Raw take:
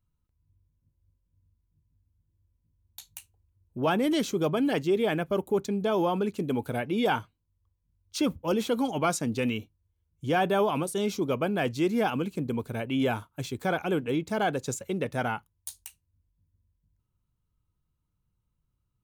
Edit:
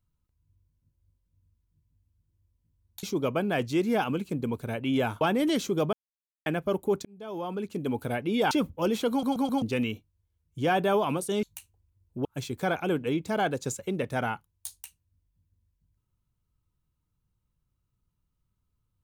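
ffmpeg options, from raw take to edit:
-filter_complex "[0:a]asplit=13[a][b][c][d][e][f][g][h][i][j][k][l][m];[a]atrim=end=3.032[n];[b]atrim=start=11.088:end=13.272[o];[c]atrim=start=3.848:end=4.57,asetpts=PTS-STARTPTS,afade=t=out:st=0.718:d=0.004:c=hsin[p];[d]atrim=start=4.57:end=5.1,asetpts=PTS-STARTPTS,volume=0[q];[e]atrim=start=5.1:end=5.69,asetpts=PTS-STARTPTS,afade=t=in:d=0.004:c=hsin,afade=t=out:st=0.586:d=0.004:c=hsin[r];[f]atrim=start=5.69:end=7.152,asetpts=PTS-STARTPTS,afade=t=in:d=0.96[s];[g]atrim=start=8.168:end=8.892[t];[h]atrim=start=8.758:end=8.892[u];[i]atrim=start=8.758:end=8.892[v];[j]atrim=start=8.758:end=8.892[w];[k]atrim=start=9.278:end=11.092[x];[l]atrim=start=3.028:end=3.852[y];[m]atrim=start=13.268[z];[n][o]acrossfade=d=0.004:c1=hsin:c2=hsin[aa];[p][q][r][s]concat=n=4:v=0:a=1[ab];[aa][ab]acrossfade=d=0.004:c1=hsin:c2=hsin[ac];[ac][t]acrossfade=d=0.004:c1=hsin:c2=hsin[ad];[ad][u]acrossfade=d=0.004:c1=hsin:c2=hsin[ae];[ae][v]acrossfade=d=0.004:c1=hsin:c2=hsin[af];[af][w]acrossfade=d=0.004:c1=hsin:c2=hsin[ag];[ag][x]acrossfade=d=0.004:c1=hsin:c2=hsin[ah];[ah][y]acrossfade=d=0.004:c1=hsin:c2=hsin[ai];[ai][z]acrossfade=d=0.004:c1=hsin:c2=hsin"

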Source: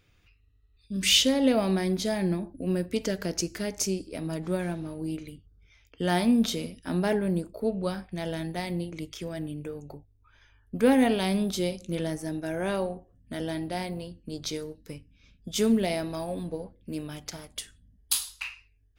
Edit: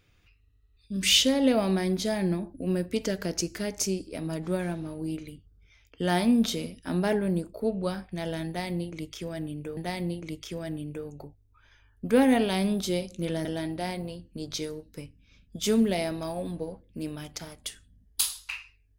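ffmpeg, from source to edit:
-filter_complex "[0:a]asplit=3[a][b][c];[a]atrim=end=9.772[d];[b]atrim=start=8.468:end=12.152[e];[c]atrim=start=13.368[f];[d][e]acrossfade=d=0.004:c1=hsin:c2=hsin[g];[g][f]acrossfade=d=0.004:c1=hsin:c2=hsin"

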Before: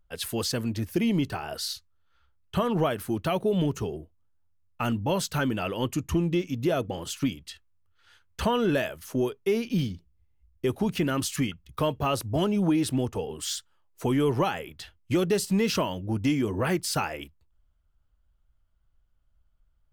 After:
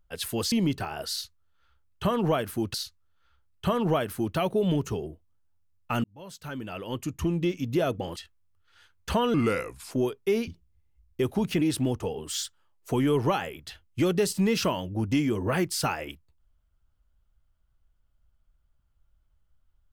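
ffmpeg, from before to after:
-filter_complex "[0:a]asplit=9[a][b][c][d][e][f][g][h][i];[a]atrim=end=0.522[j];[b]atrim=start=1.038:end=3.262[k];[c]atrim=start=1.638:end=4.94,asetpts=PTS-STARTPTS,afade=t=out:st=3.298:d=0.004:c=hsin[l];[d]atrim=start=4.94:end=7.062,asetpts=PTS-STARTPTS,afade=t=in:d=1.55[m];[e]atrim=start=7.468:end=8.654[n];[f]atrim=start=8.65:end=9.11,asetpts=PTS-STARTPTS,asetrate=35280,aresample=44100[o];[g]atrim=start=9.106:end=9.672[p];[h]atrim=start=9.918:end=11.062[q];[i]atrim=start=12.738[r];[j][k]acrossfade=d=0.004:c1=hsin:c2=hsin[s];[l][m]concat=n=2:v=0:a=1[t];[s][t]acrossfade=d=0.004:c1=hsin:c2=hsin[u];[u][n]acrossfade=d=0.004:c1=hsin:c2=hsin[v];[v][o]acrossfade=d=0.004:c1=hsin:c2=hsin[w];[w][p]acrossfade=d=0.004:c1=hsin:c2=hsin[x];[x][q]acrossfade=d=0.004:c1=hsin:c2=hsin[y];[y][r]acrossfade=d=0.004:c1=hsin:c2=hsin"

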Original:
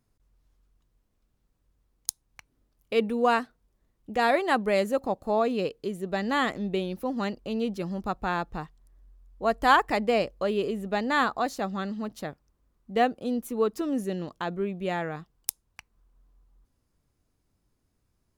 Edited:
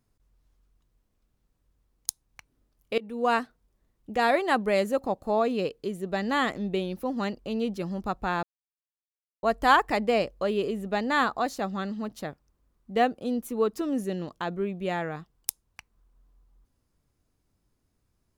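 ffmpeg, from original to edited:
-filter_complex "[0:a]asplit=4[a][b][c][d];[a]atrim=end=2.98,asetpts=PTS-STARTPTS,afade=t=out:st=2.976:d=0.004:c=hsin:silence=0.0707946[e];[b]atrim=start=2.98:end=8.43,asetpts=PTS-STARTPTS,afade=t=in:d=0.38:silence=0.0707946,afade=t=out:st=5.446:d=0.004:c=hsin[f];[c]atrim=start=8.43:end=9.43,asetpts=PTS-STARTPTS,volume=0[g];[d]atrim=start=9.43,asetpts=PTS-STARTPTS,afade=t=in:d=0.004:c=hsin[h];[e][f][g][h]concat=n=4:v=0:a=1"

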